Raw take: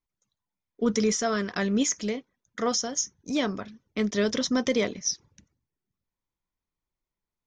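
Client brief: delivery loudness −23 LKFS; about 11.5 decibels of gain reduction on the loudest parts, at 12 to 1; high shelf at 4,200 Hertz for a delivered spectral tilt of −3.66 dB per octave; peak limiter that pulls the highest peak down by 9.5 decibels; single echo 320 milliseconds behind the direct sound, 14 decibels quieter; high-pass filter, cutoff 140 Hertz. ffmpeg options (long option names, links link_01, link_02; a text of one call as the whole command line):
ffmpeg -i in.wav -af "highpass=140,highshelf=frequency=4200:gain=-7,acompressor=threshold=-32dB:ratio=12,alimiter=level_in=6dB:limit=-24dB:level=0:latency=1,volume=-6dB,aecho=1:1:320:0.2,volume=17dB" out.wav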